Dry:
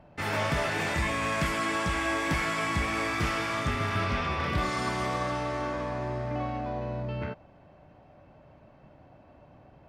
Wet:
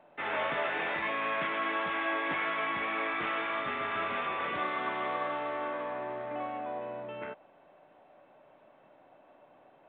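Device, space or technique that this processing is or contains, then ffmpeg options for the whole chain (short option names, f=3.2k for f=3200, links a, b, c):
telephone: -af "highpass=390,lowpass=3.4k,volume=-1.5dB" -ar 8000 -c:a pcm_mulaw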